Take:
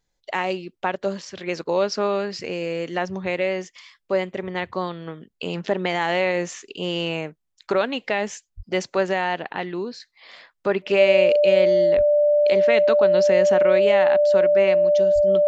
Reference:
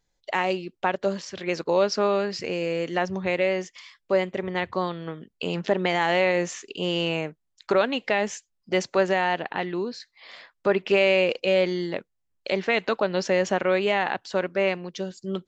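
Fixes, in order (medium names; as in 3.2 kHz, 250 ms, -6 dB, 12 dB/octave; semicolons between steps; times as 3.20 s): band-stop 590 Hz, Q 30; 8.56–8.68 s: high-pass 140 Hz 24 dB/octave; 11.96–12.08 s: high-pass 140 Hz 24 dB/octave; 15.14–15.26 s: high-pass 140 Hz 24 dB/octave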